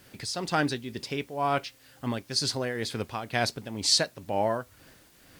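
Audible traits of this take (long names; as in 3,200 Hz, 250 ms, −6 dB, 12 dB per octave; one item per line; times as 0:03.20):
tremolo triangle 2.1 Hz, depth 75%
a quantiser's noise floor 10 bits, dither triangular
Ogg Vorbis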